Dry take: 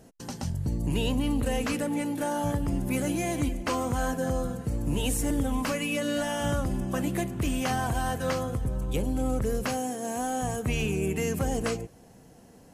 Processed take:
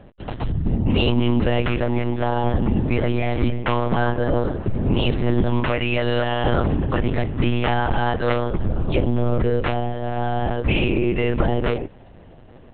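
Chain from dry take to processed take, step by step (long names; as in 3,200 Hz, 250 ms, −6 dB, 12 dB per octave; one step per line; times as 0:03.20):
one-pitch LPC vocoder at 8 kHz 120 Hz
level +8.5 dB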